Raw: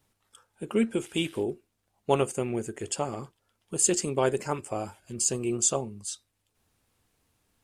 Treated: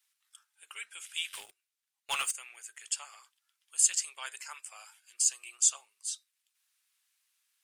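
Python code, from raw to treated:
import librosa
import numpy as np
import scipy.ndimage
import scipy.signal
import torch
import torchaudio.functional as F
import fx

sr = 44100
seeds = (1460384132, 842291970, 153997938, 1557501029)

y = scipy.signal.sosfilt(scipy.signal.bessel(4, 2100.0, 'highpass', norm='mag', fs=sr, output='sos'), x)
y = fx.leveller(y, sr, passes=3, at=(1.33, 2.31))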